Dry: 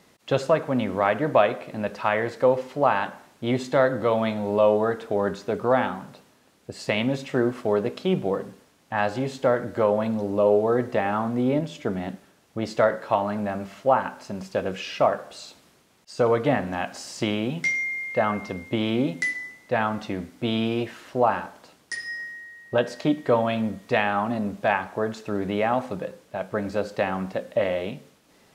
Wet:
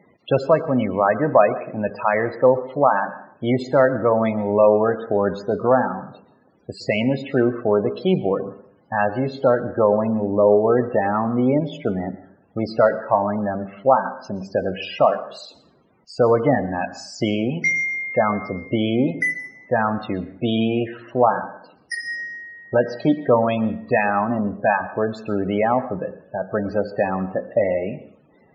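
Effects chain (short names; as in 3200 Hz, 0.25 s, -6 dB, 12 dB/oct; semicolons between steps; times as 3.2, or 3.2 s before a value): loudest bins only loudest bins 32; plate-style reverb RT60 0.59 s, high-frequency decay 0.7×, pre-delay 0.105 s, DRR 16.5 dB; gain +4.5 dB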